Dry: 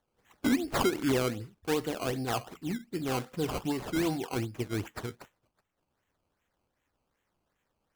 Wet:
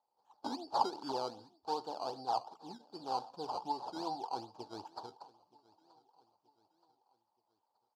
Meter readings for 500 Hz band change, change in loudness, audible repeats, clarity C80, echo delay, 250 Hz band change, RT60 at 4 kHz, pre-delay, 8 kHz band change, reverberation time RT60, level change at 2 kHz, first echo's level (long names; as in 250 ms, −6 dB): −10.0 dB, −8.0 dB, 2, no reverb audible, 926 ms, −16.0 dB, no reverb audible, no reverb audible, −16.5 dB, no reverb audible, −21.0 dB, −23.0 dB